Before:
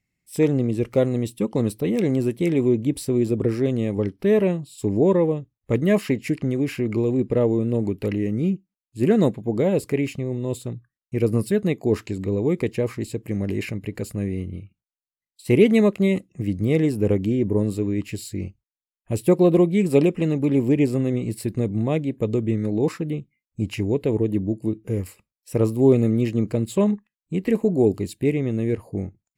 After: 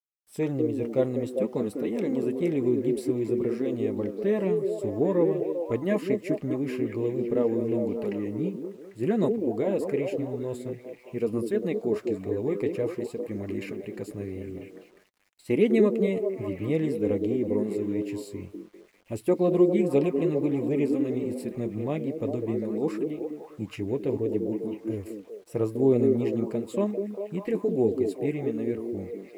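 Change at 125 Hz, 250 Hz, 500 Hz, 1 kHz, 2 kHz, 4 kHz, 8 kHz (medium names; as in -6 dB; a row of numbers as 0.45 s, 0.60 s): -10.5 dB, -5.5 dB, -3.5 dB, -4.5 dB, -7.5 dB, no reading, under -10 dB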